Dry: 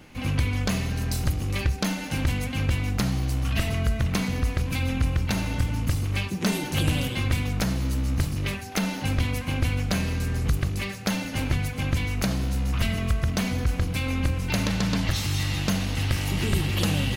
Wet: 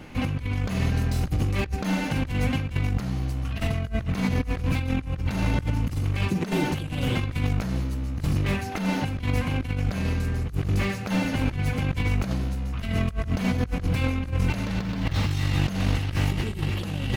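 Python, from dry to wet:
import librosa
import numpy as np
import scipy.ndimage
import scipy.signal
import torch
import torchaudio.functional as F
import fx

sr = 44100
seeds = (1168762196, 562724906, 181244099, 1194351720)

y = fx.median_filter(x, sr, points=5, at=(14.78, 15.31))
y = fx.high_shelf(y, sr, hz=3400.0, db=-8.0)
y = fx.over_compress(y, sr, threshold_db=-28.0, ratio=-0.5)
y = fx.slew_limit(y, sr, full_power_hz=56.0)
y = y * librosa.db_to_amplitude(3.5)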